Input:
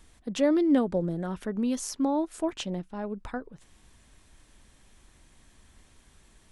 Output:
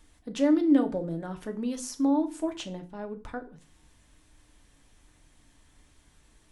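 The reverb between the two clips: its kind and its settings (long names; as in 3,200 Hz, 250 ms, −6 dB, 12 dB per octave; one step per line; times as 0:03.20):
feedback delay network reverb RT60 0.36 s, low-frequency decay 1.3×, high-frequency decay 0.9×, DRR 5.5 dB
level −3.5 dB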